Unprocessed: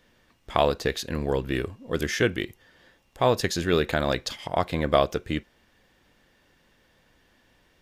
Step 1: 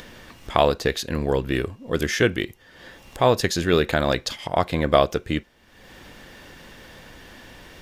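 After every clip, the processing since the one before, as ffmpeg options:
-af "acompressor=mode=upward:threshold=0.02:ratio=2.5,volume=1.5"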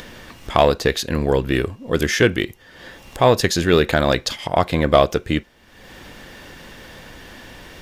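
-af "asoftclip=type=tanh:threshold=0.562,volume=1.68"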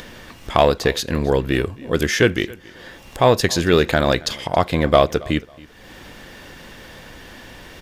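-af "aecho=1:1:274|548:0.075|0.0195"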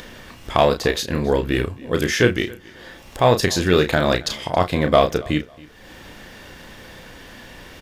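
-filter_complex "[0:a]asplit=2[s0][s1];[s1]adelay=33,volume=0.447[s2];[s0][s2]amix=inputs=2:normalize=0,volume=0.841"

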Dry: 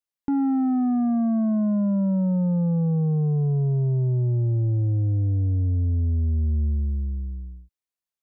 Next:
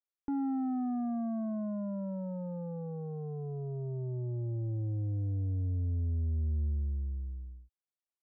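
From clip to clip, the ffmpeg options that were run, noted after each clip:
-af "lowpass=f=1300:p=1,equalizer=f=160:t=o:w=0.99:g=-12,volume=0.473"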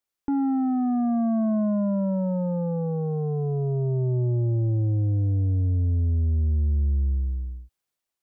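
-af "dynaudnorm=f=780:g=3:m=1.58,alimiter=level_in=1.33:limit=0.0631:level=0:latency=1:release=339,volume=0.75,volume=2.66"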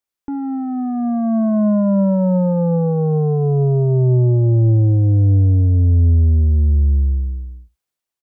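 -af "dynaudnorm=f=250:g=11:m=3.16,aecho=1:1:71:0.0891"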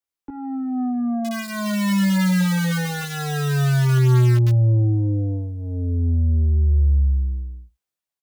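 -filter_complex "[0:a]acrossover=split=230|280[s0][s1][s2];[s2]aeval=exprs='(mod(12.6*val(0)+1,2)-1)/12.6':c=same[s3];[s0][s1][s3]amix=inputs=3:normalize=0,asplit=2[s4][s5];[s5]adelay=16,volume=0.708[s6];[s4][s6]amix=inputs=2:normalize=0,volume=0.501"

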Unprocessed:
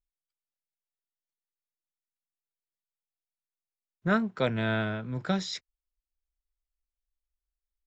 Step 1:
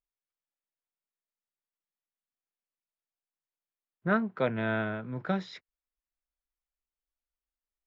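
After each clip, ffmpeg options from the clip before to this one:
-af "lowpass=2300,lowshelf=f=96:g=-11"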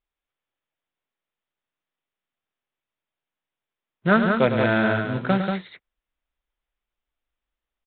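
-af "aresample=8000,acrusher=bits=4:mode=log:mix=0:aa=0.000001,aresample=44100,aecho=1:1:105|186.6:0.355|0.562,volume=2.66"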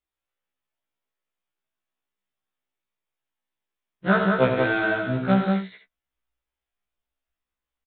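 -af "aecho=1:1:66|77:0.335|0.211,afftfilt=real='re*1.73*eq(mod(b,3),0)':imag='im*1.73*eq(mod(b,3),0)':win_size=2048:overlap=0.75"

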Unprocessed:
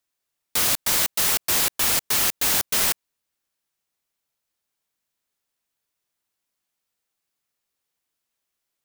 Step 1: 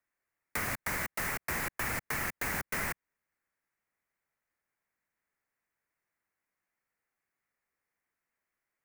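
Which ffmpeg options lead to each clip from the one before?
-filter_complex "[0:a]highshelf=f=2600:t=q:w=3:g=-9,acrossover=split=210[s0][s1];[s1]acompressor=threshold=0.0316:ratio=5[s2];[s0][s2]amix=inputs=2:normalize=0,volume=0.794"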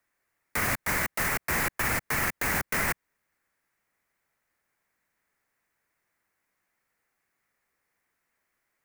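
-af "alimiter=level_in=1.26:limit=0.0631:level=0:latency=1:release=17,volume=0.794,volume=2.66"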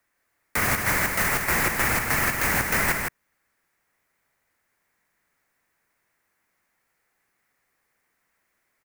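-af "aecho=1:1:161:0.562,volume=1.58"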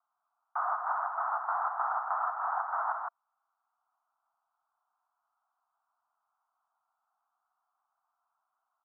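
-af "asuperpass=centerf=970:order=12:qfactor=1.4"

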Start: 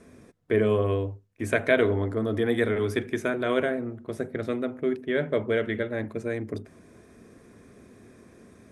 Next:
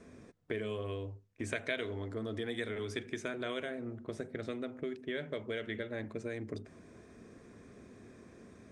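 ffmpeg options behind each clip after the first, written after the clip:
-filter_complex "[0:a]lowpass=f=8400:w=0.5412,lowpass=f=8400:w=1.3066,acrossover=split=2600[s0][s1];[s0]acompressor=threshold=0.0224:ratio=6[s2];[s2][s1]amix=inputs=2:normalize=0,volume=0.708"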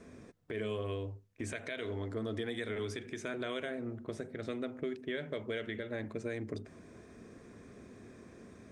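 -af "alimiter=level_in=1.58:limit=0.0631:level=0:latency=1:release=82,volume=0.631,volume=1.19"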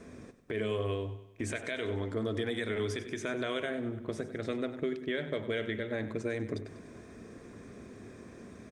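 -af "aecho=1:1:97|194|291|388|485:0.211|0.106|0.0528|0.0264|0.0132,volume=1.58"

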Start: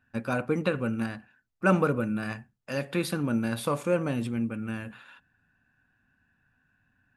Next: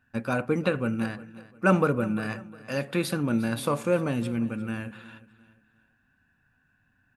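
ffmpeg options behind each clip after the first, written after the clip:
-af "aecho=1:1:353|706|1059:0.126|0.0415|0.0137,volume=1.19"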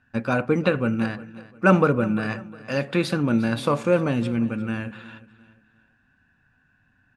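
-af "lowpass=6300,volume=1.68"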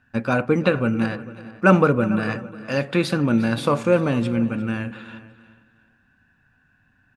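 -filter_complex "[0:a]asplit=2[s0][s1];[s1]adelay=449,volume=0.141,highshelf=f=4000:g=-10.1[s2];[s0][s2]amix=inputs=2:normalize=0,volume=1.26"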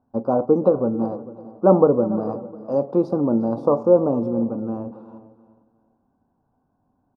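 -af "firequalizer=gain_entry='entry(120,0);entry(270,9);entry(400,12);entry(840,12);entry(1200,1);entry(1700,-30);entry(3300,-28);entry(5300,-11);entry(7800,-24)':delay=0.05:min_phase=1,volume=0.398"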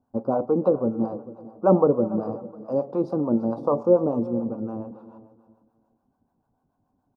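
-filter_complex "[0:a]acrossover=split=580[s0][s1];[s0]aeval=exprs='val(0)*(1-0.7/2+0.7/2*cos(2*PI*6.9*n/s))':c=same[s2];[s1]aeval=exprs='val(0)*(1-0.7/2-0.7/2*cos(2*PI*6.9*n/s))':c=same[s3];[s2][s3]amix=inputs=2:normalize=0"

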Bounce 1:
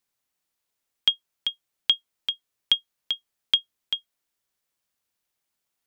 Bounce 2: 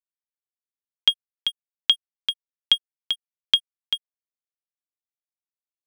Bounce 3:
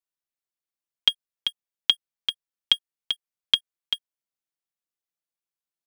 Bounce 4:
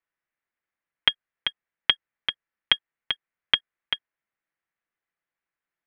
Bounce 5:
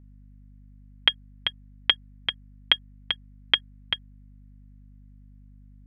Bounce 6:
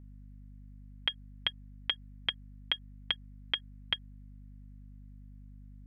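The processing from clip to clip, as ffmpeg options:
-af "aeval=exprs='sgn(val(0))*max(abs(val(0))-0.00631,0)':c=same,volume=1.41"
-af "aecho=1:1:6:0.41"
-af "lowpass=f=1900:t=q:w=2.6,volume=1.88"
-af "aeval=exprs='val(0)+0.00355*(sin(2*PI*50*n/s)+sin(2*PI*2*50*n/s)/2+sin(2*PI*3*50*n/s)/3+sin(2*PI*4*50*n/s)/4+sin(2*PI*5*50*n/s)/5)':c=same"
-af "alimiter=limit=0.224:level=0:latency=1:release=113"

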